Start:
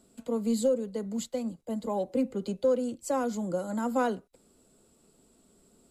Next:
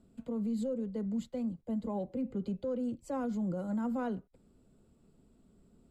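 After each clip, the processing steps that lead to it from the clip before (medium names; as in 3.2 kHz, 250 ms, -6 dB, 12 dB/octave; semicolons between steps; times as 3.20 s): tone controls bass +12 dB, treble -11 dB; peak limiter -21.5 dBFS, peak gain reduction 8 dB; trim -6.5 dB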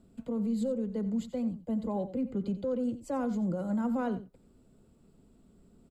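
delay 89 ms -14 dB; trim +3 dB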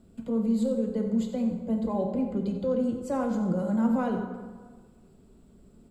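plate-style reverb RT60 1.5 s, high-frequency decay 0.6×, DRR 3 dB; trim +3 dB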